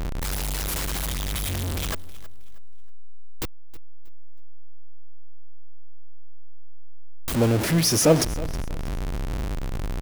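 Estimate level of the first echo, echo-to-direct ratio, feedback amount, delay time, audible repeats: −19.0 dB, −18.5 dB, 30%, 318 ms, 2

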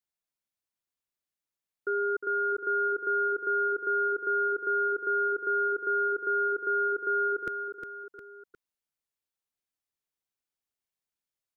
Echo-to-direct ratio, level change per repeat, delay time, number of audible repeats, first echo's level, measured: −7.0 dB, −6.0 dB, 357 ms, 3, −8.0 dB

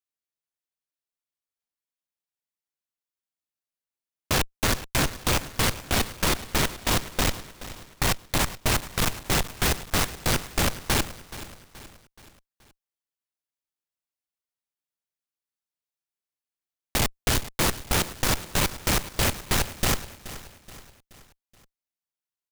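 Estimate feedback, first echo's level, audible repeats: 47%, −15.5 dB, 3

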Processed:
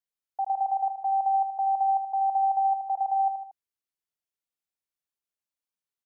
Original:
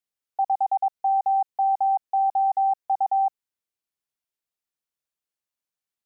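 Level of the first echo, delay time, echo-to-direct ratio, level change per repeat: −9.0 dB, 77 ms, −7.5 dB, −4.5 dB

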